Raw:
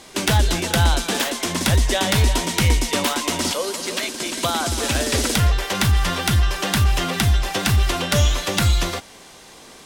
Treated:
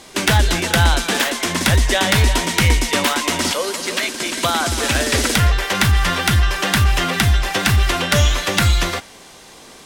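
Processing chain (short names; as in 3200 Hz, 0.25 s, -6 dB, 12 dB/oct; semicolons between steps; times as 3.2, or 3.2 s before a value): dynamic EQ 1800 Hz, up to +5 dB, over -37 dBFS, Q 1.1; gain +2 dB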